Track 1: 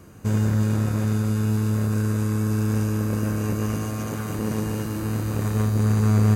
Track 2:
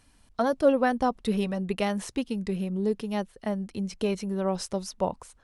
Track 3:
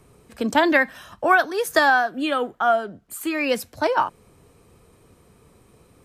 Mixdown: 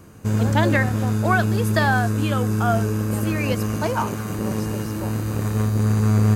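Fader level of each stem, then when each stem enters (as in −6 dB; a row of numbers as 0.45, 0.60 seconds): +1.0, −8.5, −4.0 decibels; 0.00, 0.00, 0.00 seconds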